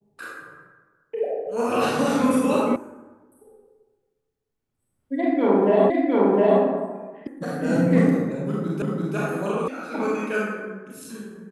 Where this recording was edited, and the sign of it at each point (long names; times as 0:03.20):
0:02.76: cut off before it has died away
0:05.90: the same again, the last 0.71 s
0:07.27: cut off before it has died away
0:08.82: the same again, the last 0.34 s
0:09.68: cut off before it has died away